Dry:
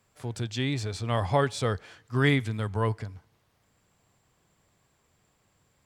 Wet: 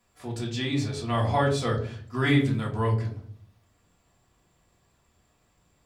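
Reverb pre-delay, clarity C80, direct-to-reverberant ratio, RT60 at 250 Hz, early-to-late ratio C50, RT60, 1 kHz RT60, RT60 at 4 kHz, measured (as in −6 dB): 3 ms, 13.5 dB, −3.5 dB, 0.85 s, 9.0 dB, 0.55 s, 0.45 s, 0.30 s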